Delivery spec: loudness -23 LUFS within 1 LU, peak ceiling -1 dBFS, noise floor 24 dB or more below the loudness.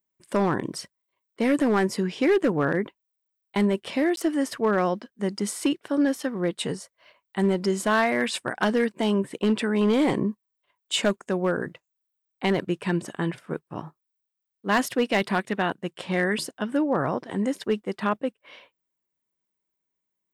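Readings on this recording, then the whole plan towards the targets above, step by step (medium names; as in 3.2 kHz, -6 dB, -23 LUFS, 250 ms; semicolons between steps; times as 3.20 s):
clipped samples 0.9%; clipping level -15.0 dBFS; dropouts 1; longest dropout 12 ms; loudness -25.5 LUFS; peak level -15.0 dBFS; loudness target -23.0 LUFS
-> clip repair -15 dBFS; interpolate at 4.16 s, 12 ms; trim +2.5 dB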